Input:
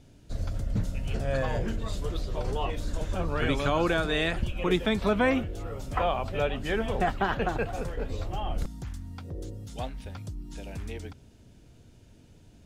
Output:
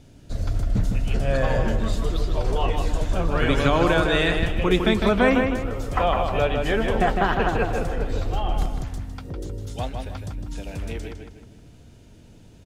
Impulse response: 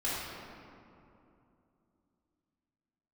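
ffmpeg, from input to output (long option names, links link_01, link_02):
-filter_complex "[0:a]asplit=2[link_01][link_02];[link_02]adelay=156,lowpass=frequency=3700:poles=1,volume=-4.5dB,asplit=2[link_03][link_04];[link_04]adelay=156,lowpass=frequency=3700:poles=1,volume=0.41,asplit=2[link_05][link_06];[link_06]adelay=156,lowpass=frequency=3700:poles=1,volume=0.41,asplit=2[link_07][link_08];[link_08]adelay=156,lowpass=frequency=3700:poles=1,volume=0.41,asplit=2[link_09][link_10];[link_10]adelay=156,lowpass=frequency=3700:poles=1,volume=0.41[link_11];[link_01][link_03][link_05][link_07][link_09][link_11]amix=inputs=6:normalize=0,volume=5dB"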